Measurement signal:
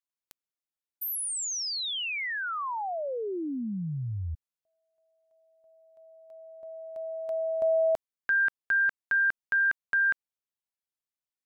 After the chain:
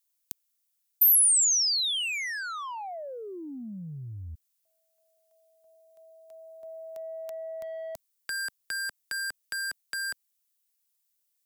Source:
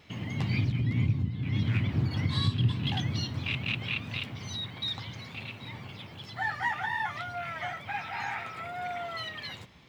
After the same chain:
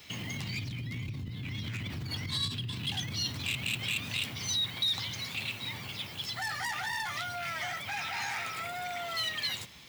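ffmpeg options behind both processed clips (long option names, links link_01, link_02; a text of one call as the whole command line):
ffmpeg -i in.wav -filter_complex "[0:a]acrossover=split=210|790|3400[link_01][link_02][link_03][link_04];[link_02]alimiter=level_in=10.5dB:limit=-24dB:level=0:latency=1,volume=-10.5dB[link_05];[link_03]asoftclip=type=tanh:threshold=-34dB[link_06];[link_01][link_05][link_06][link_04]amix=inputs=4:normalize=0,acompressor=threshold=-38dB:ratio=4:attack=8.4:release=26:detection=peak,crystalizer=i=6:c=0,volume=-1.5dB" out.wav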